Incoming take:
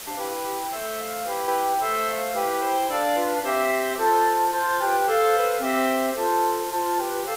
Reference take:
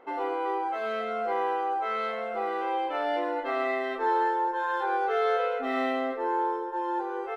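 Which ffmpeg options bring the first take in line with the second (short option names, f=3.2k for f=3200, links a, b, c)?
-af "afwtdn=0.016,asetnsamples=n=441:p=0,asendcmd='1.48 volume volume -5.5dB',volume=0dB"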